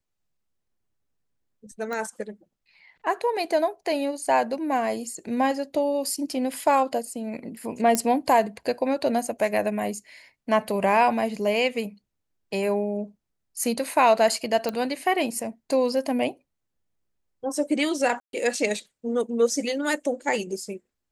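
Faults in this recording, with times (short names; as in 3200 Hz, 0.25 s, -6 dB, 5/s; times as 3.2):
1.93 pop -19 dBFS
7.95 pop -8 dBFS
14.69 pop -14 dBFS
18.2–18.33 gap 0.132 s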